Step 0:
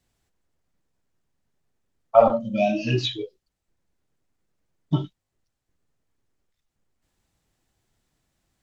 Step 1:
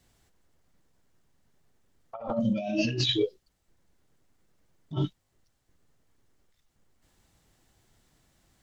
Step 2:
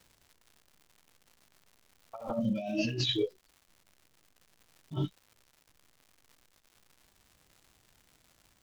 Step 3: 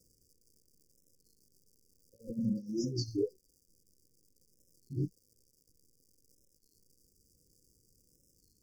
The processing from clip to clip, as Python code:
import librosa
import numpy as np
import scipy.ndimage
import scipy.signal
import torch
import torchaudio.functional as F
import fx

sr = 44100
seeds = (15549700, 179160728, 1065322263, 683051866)

y1 = fx.notch(x, sr, hz=2500.0, q=25.0)
y1 = fx.over_compress(y1, sr, threshold_db=-30.0, ratio=-1.0)
y2 = fx.dmg_crackle(y1, sr, seeds[0], per_s=230.0, level_db=-44.0)
y2 = y2 * 10.0 ** (-4.0 / 20.0)
y3 = fx.brickwall_bandstop(y2, sr, low_hz=540.0, high_hz=4600.0)
y3 = fx.record_warp(y3, sr, rpm=33.33, depth_cents=160.0)
y3 = y3 * 10.0 ** (-1.5 / 20.0)